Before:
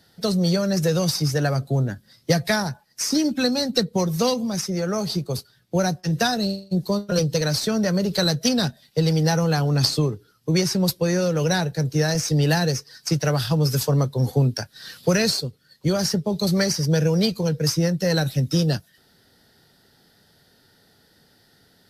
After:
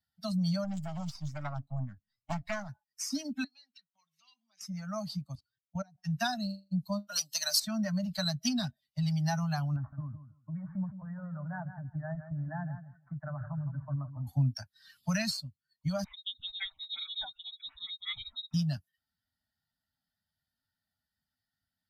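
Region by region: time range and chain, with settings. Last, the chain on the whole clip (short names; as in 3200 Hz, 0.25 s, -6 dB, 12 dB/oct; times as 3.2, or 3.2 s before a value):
0.64–2.69 half-wave gain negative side -7 dB + high shelf 7000 Hz -12 dB + Doppler distortion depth 0.74 ms
3.44–4.61 compressor 12:1, threshold -28 dBFS + band-pass 2800 Hz, Q 1.4
5.35–5.98 LPF 6600 Hz + level quantiser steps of 20 dB
7.07–7.6 HPF 470 Hz + high shelf 3500 Hz +12 dB + notch 2300 Hz, Q 17
9.76–14.27 steep low-pass 1700 Hz 48 dB/oct + compressor 4:1, threshold -21 dBFS + feedback echo 0.162 s, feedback 28%, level -7.5 dB
16.04–18.54 tilt +1.5 dB/oct + inverted band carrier 3900 Hz + photocell phaser 5.5 Hz
whole clip: per-bin expansion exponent 1.5; Chebyshev band-stop 280–600 Hz, order 4; gain -7 dB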